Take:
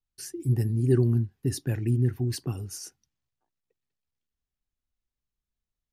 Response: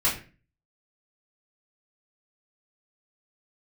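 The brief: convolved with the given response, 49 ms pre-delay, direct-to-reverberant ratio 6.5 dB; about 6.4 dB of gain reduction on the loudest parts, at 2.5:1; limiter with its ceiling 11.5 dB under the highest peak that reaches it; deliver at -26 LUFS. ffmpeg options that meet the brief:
-filter_complex "[0:a]acompressor=threshold=-26dB:ratio=2.5,alimiter=level_in=4.5dB:limit=-24dB:level=0:latency=1,volume=-4.5dB,asplit=2[a][b];[1:a]atrim=start_sample=2205,adelay=49[c];[b][c]afir=irnorm=-1:irlink=0,volume=-18.5dB[d];[a][d]amix=inputs=2:normalize=0,volume=10dB"

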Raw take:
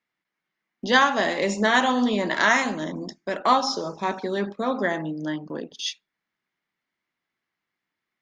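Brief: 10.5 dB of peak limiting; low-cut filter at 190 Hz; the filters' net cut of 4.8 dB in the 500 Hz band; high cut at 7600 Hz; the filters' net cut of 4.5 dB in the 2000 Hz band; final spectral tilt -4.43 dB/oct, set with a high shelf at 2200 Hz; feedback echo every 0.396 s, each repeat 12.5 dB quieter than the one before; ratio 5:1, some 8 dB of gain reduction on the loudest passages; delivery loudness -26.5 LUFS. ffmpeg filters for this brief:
-af "highpass=190,lowpass=7.6k,equalizer=f=500:t=o:g=-5.5,equalizer=f=2k:t=o:g=-3.5,highshelf=f=2.2k:g=-3.5,acompressor=threshold=-25dB:ratio=5,alimiter=limit=-24dB:level=0:latency=1,aecho=1:1:396|792|1188:0.237|0.0569|0.0137,volume=7.5dB"

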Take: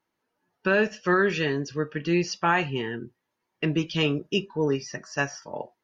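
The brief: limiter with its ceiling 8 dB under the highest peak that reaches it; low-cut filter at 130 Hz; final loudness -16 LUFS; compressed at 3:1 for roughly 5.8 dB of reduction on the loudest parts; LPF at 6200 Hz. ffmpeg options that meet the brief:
-af "highpass=130,lowpass=6.2k,acompressor=threshold=-25dB:ratio=3,volume=17dB,alimiter=limit=-4dB:level=0:latency=1"

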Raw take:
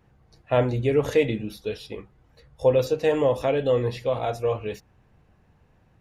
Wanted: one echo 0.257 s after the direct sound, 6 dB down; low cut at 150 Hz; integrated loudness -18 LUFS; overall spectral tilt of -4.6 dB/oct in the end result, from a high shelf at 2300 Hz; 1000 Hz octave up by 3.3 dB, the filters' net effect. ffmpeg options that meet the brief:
-af "highpass=150,equalizer=f=1k:t=o:g=4,highshelf=f=2.3k:g=3.5,aecho=1:1:257:0.501,volume=4.5dB"

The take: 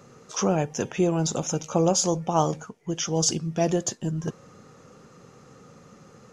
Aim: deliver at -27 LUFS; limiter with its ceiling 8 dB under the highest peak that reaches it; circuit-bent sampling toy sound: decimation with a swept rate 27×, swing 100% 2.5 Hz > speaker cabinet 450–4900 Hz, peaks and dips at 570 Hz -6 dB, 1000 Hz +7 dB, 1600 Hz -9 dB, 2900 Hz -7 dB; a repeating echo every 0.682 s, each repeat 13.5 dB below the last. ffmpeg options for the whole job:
-af "alimiter=limit=-15.5dB:level=0:latency=1,aecho=1:1:682|1364:0.211|0.0444,acrusher=samples=27:mix=1:aa=0.000001:lfo=1:lforange=27:lforate=2.5,highpass=450,equalizer=f=570:t=q:w=4:g=-6,equalizer=f=1k:t=q:w=4:g=7,equalizer=f=1.6k:t=q:w=4:g=-9,equalizer=f=2.9k:t=q:w=4:g=-7,lowpass=f=4.9k:w=0.5412,lowpass=f=4.9k:w=1.3066,volume=6dB"

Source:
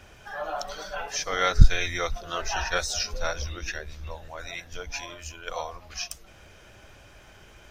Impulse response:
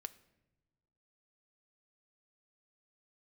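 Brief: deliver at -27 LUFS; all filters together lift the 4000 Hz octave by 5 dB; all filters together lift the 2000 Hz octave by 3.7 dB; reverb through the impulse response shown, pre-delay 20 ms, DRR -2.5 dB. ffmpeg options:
-filter_complex "[0:a]equalizer=f=2k:t=o:g=3.5,equalizer=f=4k:t=o:g=5.5,asplit=2[a][b];[1:a]atrim=start_sample=2205,adelay=20[c];[b][c]afir=irnorm=-1:irlink=0,volume=6.5dB[d];[a][d]amix=inputs=2:normalize=0,volume=-4.5dB"

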